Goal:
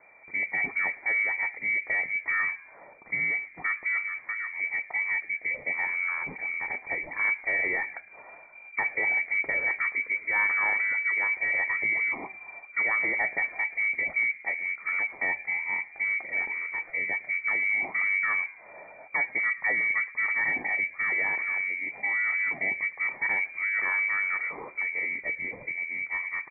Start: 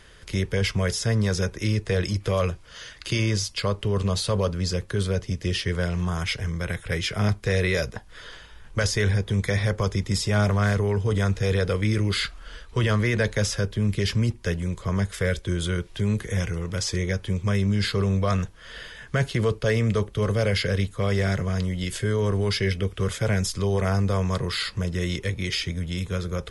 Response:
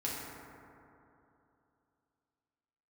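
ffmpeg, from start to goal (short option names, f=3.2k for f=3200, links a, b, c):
-filter_complex "[0:a]asplit=3[a][b][c];[a]afade=t=out:st=3.99:d=0.02[d];[b]acompressor=threshold=-25dB:ratio=6,afade=t=in:st=3.99:d=0.02,afade=t=out:st=4.55:d=0.02[e];[c]afade=t=in:st=4.55:d=0.02[f];[d][e][f]amix=inputs=3:normalize=0,flanger=delay=6.2:depth=1.5:regen=-84:speed=1.1:shape=sinusoidal,afreqshift=110,asplit=4[g][h][i][j];[h]adelay=111,afreqshift=89,volume=-22.5dB[k];[i]adelay=222,afreqshift=178,volume=-29.4dB[l];[j]adelay=333,afreqshift=267,volume=-36.4dB[m];[g][k][l][m]amix=inputs=4:normalize=0,lowpass=f=2.1k:t=q:w=0.5098,lowpass=f=2.1k:t=q:w=0.6013,lowpass=f=2.1k:t=q:w=0.9,lowpass=f=2.1k:t=q:w=2.563,afreqshift=-2500"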